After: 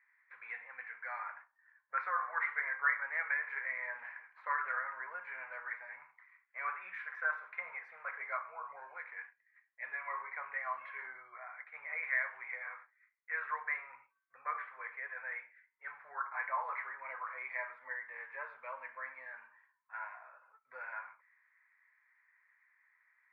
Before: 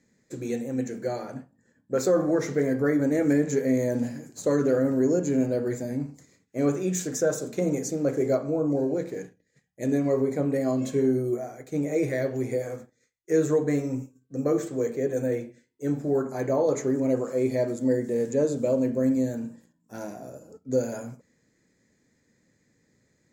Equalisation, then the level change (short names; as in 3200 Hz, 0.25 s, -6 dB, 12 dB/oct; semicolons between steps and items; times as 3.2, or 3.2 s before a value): elliptic band-pass 1000–2200 Hz, stop band 60 dB; bell 1300 Hz -2 dB; +7.0 dB